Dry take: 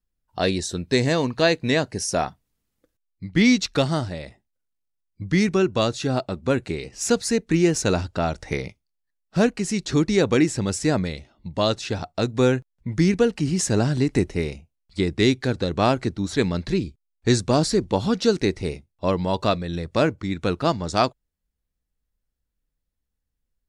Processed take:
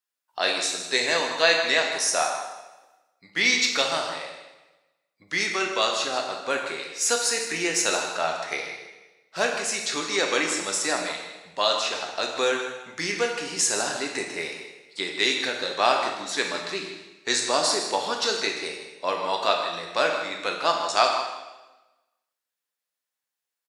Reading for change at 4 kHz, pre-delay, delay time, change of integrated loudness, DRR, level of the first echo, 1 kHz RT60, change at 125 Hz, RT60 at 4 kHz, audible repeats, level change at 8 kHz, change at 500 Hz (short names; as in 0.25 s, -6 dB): +5.0 dB, 4 ms, 0.157 s, -2.0 dB, 1.0 dB, -11.5 dB, 1.1 s, -24.5 dB, 1.0 s, 1, +4.5 dB, -4.5 dB